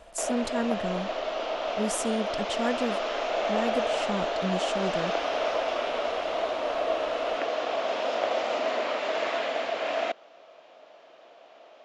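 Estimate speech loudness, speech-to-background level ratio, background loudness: −32.0 LKFS, −3.0 dB, −29.0 LKFS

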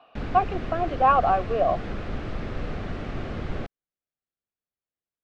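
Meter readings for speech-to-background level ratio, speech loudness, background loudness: 10.0 dB, −24.0 LKFS, −34.0 LKFS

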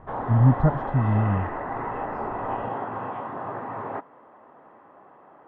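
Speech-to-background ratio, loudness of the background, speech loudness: 9.0 dB, −31.5 LKFS, −22.5 LKFS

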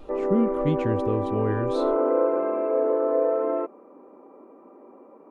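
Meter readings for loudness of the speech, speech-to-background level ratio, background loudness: −28.0 LKFS, −3.0 dB, −25.0 LKFS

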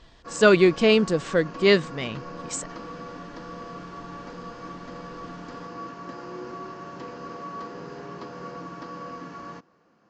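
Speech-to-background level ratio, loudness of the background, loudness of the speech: 17.5 dB, −39.0 LKFS, −21.5 LKFS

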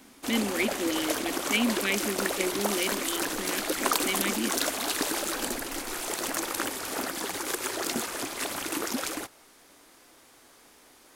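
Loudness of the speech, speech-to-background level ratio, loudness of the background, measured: −31.5 LKFS, −1.5 dB, −30.0 LKFS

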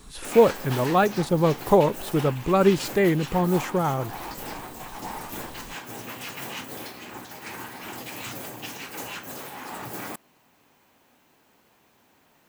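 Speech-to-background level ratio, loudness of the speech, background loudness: 13.5 dB, −22.5 LKFS, −36.0 LKFS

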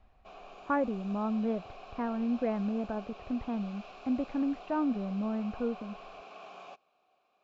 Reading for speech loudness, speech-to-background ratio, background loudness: −33.5 LKFS, 15.5 dB, −49.0 LKFS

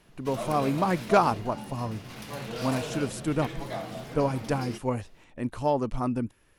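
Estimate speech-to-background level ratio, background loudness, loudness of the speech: 8.5 dB, −37.5 LKFS, −29.0 LKFS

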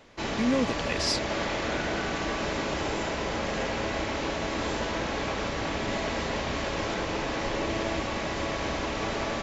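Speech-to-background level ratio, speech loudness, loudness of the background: 1.0 dB, −29.0 LKFS, −30.0 LKFS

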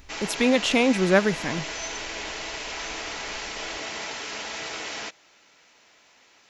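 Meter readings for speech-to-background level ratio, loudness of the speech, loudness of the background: 9.5 dB, −22.5 LKFS, −32.0 LKFS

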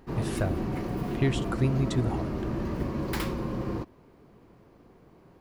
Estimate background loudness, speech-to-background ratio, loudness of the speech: −32.0 LKFS, 1.0 dB, −31.0 LKFS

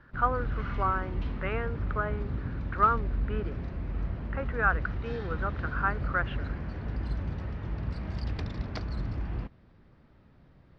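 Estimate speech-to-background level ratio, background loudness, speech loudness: 3.5 dB, −35.5 LKFS, −32.0 LKFS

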